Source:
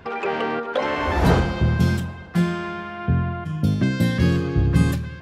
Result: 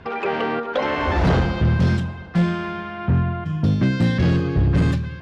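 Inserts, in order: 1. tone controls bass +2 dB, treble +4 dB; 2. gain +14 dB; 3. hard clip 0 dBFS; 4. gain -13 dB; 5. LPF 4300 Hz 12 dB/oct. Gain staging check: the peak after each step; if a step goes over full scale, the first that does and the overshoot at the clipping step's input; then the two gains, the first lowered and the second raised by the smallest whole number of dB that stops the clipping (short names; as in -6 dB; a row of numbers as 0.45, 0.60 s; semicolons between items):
-4.0, +10.0, 0.0, -13.0, -12.5 dBFS; step 2, 10.0 dB; step 2 +4 dB, step 4 -3 dB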